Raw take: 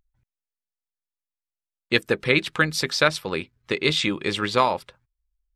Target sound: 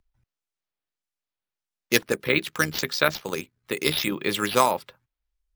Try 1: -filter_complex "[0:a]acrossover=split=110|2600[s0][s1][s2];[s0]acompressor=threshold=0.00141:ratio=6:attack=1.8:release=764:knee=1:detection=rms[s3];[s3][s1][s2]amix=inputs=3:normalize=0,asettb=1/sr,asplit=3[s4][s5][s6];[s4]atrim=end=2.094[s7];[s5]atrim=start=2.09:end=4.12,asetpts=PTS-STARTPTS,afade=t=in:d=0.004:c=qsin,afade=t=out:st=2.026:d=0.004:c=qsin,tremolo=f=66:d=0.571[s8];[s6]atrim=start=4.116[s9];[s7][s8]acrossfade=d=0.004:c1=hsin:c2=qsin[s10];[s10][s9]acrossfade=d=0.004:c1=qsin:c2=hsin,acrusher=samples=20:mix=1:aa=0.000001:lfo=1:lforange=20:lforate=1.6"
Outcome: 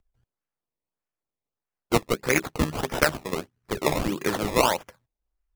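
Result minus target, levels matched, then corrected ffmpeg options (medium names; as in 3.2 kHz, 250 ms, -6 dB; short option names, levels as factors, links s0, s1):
decimation with a swept rate: distortion +13 dB
-filter_complex "[0:a]acrossover=split=110|2600[s0][s1][s2];[s0]acompressor=threshold=0.00141:ratio=6:attack=1.8:release=764:knee=1:detection=rms[s3];[s3][s1][s2]amix=inputs=3:normalize=0,asettb=1/sr,asplit=3[s4][s5][s6];[s4]atrim=end=2.094[s7];[s5]atrim=start=2.09:end=4.12,asetpts=PTS-STARTPTS,afade=t=in:d=0.004:c=qsin,afade=t=out:st=2.026:d=0.004:c=qsin,tremolo=f=66:d=0.571[s8];[s6]atrim=start=4.116[s9];[s7][s8]acrossfade=d=0.004:c1=hsin:c2=qsin[s10];[s10][s9]acrossfade=d=0.004:c1=qsin:c2=hsin,acrusher=samples=4:mix=1:aa=0.000001:lfo=1:lforange=4:lforate=1.6"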